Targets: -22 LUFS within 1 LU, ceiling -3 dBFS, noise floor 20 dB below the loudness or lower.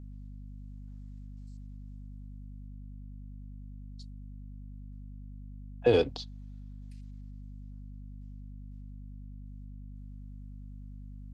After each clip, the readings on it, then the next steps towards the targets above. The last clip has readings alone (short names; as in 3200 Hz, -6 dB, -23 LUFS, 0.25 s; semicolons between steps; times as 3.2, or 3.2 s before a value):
hum 50 Hz; harmonics up to 250 Hz; hum level -42 dBFS; loudness -39.5 LUFS; peak -10.5 dBFS; loudness target -22.0 LUFS
-> de-hum 50 Hz, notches 5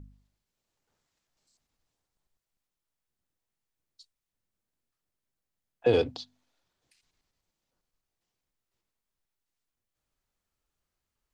hum none; loudness -27.5 LUFS; peak -11.5 dBFS; loudness target -22.0 LUFS
-> gain +5.5 dB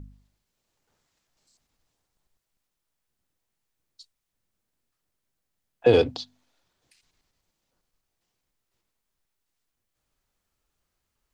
loudness -22.0 LUFS; peak -6.0 dBFS; noise floor -82 dBFS